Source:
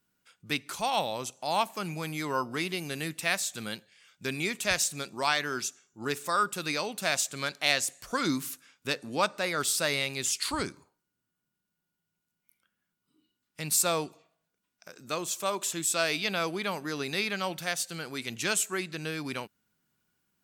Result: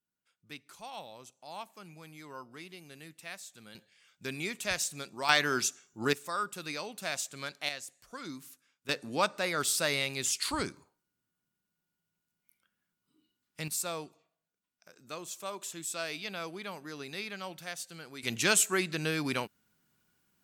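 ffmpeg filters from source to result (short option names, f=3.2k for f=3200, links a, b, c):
-af "asetnsamples=n=441:p=0,asendcmd='3.75 volume volume -5dB;5.29 volume volume 3dB;6.13 volume volume -7dB;7.69 volume volume -14dB;8.89 volume volume -1.5dB;13.68 volume volume -9dB;18.23 volume volume 3dB',volume=-15.5dB"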